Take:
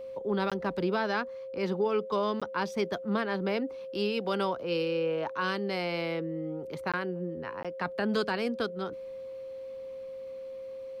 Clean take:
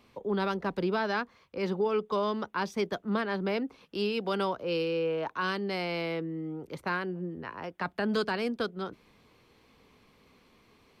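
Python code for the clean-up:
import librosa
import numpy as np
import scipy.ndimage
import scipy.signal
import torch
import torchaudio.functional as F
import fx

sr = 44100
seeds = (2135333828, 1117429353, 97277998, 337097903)

y = fx.notch(x, sr, hz=530.0, q=30.0)
y = fx.fix_interpolate(y, sr, at_s=(0.5, 2.4, 6.92, 7.63), length_ms=16.0)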